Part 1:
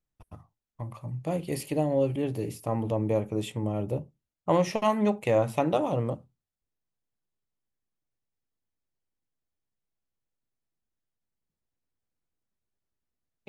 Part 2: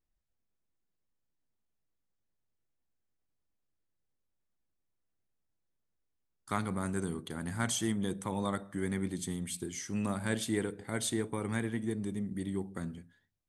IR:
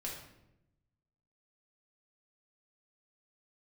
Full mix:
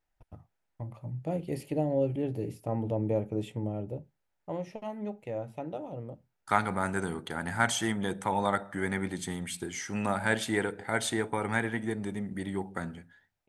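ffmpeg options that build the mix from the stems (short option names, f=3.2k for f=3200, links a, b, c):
-filter_complex "[0:a]agate=range=-33dB:threshold=-49dB:ratio=3:detection=peak,highshelf=f=2.2k:g=-10,volume=-2dB,afade=t=out:st=3.54:d=0.6:silence=0.334965[a];[1:a]firequalizer=gain_entry='entry(280,0);entry(830,13);entry(3500,3);entry(9000,-1)':delay=0.05:min_phase=1,volume=0.5dB[b];[a][b]amix=inputs=2:normalize=0,equalizer=f=1.1k:w=8:g=-12.5"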